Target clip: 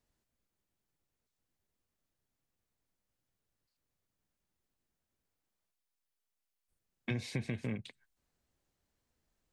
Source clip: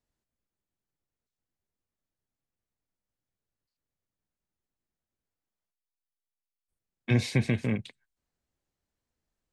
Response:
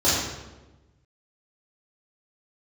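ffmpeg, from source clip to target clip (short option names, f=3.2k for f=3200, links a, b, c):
-af "acompressor=threshold=-40dB:ratio=4,volume=3.5dB"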